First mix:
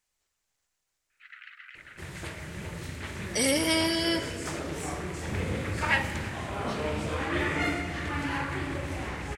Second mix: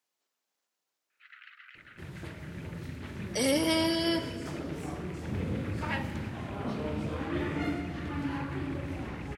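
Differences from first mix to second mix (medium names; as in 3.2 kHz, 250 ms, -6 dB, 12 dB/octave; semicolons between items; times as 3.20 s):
speech: add high-pass 390 Hz; second sound -6.0 dB; master: add graphic EQ 125/250/2000/8000 Hz +5/+7/-5/-8 dB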